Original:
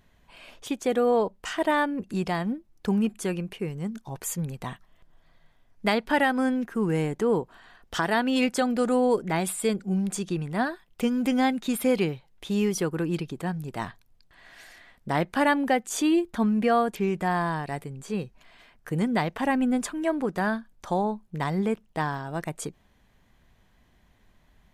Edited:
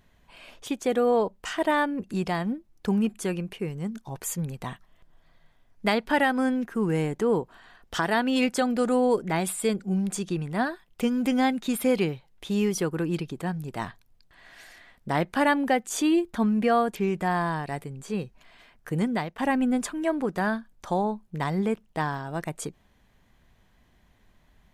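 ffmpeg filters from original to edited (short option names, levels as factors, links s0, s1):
-filter_complex "[0:a]asplit=2[s0][s1];[s0]atrim=end=19.38,asetpts=PTS-STARTPTS,afade=t=out:st=19.04:d=0.34:silence=0.266073[s2];[s1]atrim=start=19.38,asetpts=PTS-STARTPTS,afade=t=in:d=0.004:c=hsin:silence=0.266073[s3];[s2][s3]concat=n=2:v=0:a=1"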